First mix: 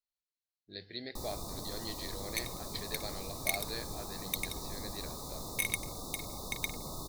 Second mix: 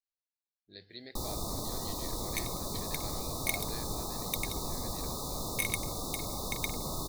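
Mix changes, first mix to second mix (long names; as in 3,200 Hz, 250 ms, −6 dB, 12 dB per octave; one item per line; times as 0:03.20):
speech −5.0 dB
first sound +5.5 dB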